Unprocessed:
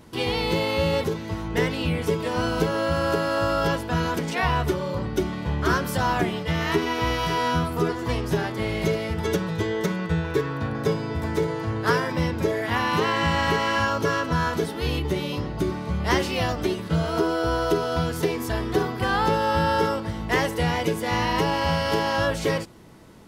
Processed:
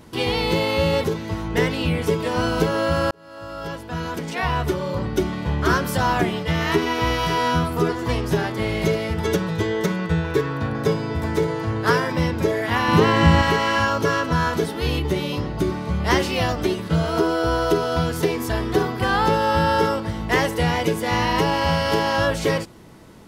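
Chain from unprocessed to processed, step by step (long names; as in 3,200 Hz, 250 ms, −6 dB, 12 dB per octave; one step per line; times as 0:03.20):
0:03.11–0:05.03: fade in
0:12.88–0:13.42: low-shelf EQ 410 Hz +9.5 dB
level +3 dB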